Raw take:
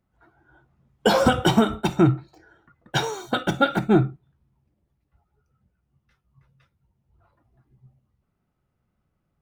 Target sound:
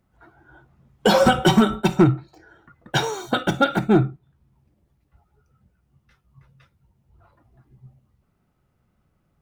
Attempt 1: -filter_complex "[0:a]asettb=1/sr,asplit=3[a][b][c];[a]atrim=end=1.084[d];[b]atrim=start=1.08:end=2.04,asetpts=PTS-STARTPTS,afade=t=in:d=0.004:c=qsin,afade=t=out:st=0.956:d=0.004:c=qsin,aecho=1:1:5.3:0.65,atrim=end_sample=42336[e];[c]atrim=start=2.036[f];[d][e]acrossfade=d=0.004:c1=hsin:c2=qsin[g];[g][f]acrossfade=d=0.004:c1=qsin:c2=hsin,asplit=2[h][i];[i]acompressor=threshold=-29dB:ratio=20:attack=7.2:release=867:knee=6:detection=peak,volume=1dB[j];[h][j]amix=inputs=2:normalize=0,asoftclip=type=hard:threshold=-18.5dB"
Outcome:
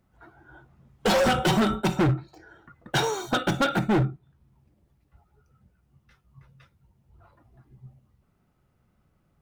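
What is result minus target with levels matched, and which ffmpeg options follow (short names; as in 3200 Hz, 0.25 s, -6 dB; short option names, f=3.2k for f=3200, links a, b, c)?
hard clip: distortion +14 dB
-filter_complex "[0:a]asettb=1/sr,asplit=3[a][b][c];[a]atrim=end=1.084[d];[b]atrim=start=1.08:end=2.04,asetpts=PTS-STARTPTS,afade=t=in:d=0.004:c=qsin,afade=t=out:st=0.956:d=0.004:c=qsin,aecho=1:1:5.3:0.65,atrim=end_sample=42336[e];[c]atrim=start=2.036[f];[d][e]acrossfade=d=0.004:c1=hsin:c2=qsin[g];[g][f]acrossfade=d=0.004:c1=qsin:c2=hsin,asplit=2[h][i];[i]acompressor=threshold=-29dB:ratio=20:attack=7.2:release=867:knee=6:detection=peak,volume=1dB[j];[h][j]amix=inputs=2:normalize=0,asoftclip=type=hard:threshold=-7.5dB"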